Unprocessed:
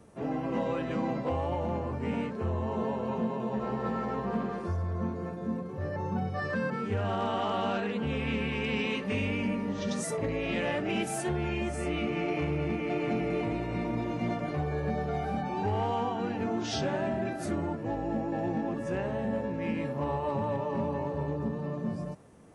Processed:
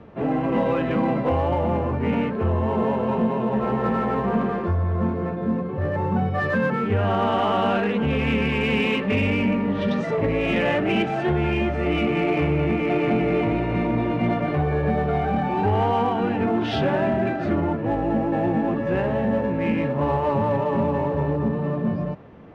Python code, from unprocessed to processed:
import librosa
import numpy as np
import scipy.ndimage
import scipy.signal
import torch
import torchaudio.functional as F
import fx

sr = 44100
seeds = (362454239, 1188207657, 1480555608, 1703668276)

p1 = scipy.signal.sosfilt(scipy.signal.butter(4, 3300.0, 'lowpass', fs=sr, output='sos'), x)
p2 = np.clip(p1, -10.0 ** (-35.0 / 20.0), 10.0 ** (-35.0 / 20.0))
p3 = p1 + (p2 * librosa.db_to_amplitude(-9.5))
y = p3 * librosa.db_to_amplitude(8.0)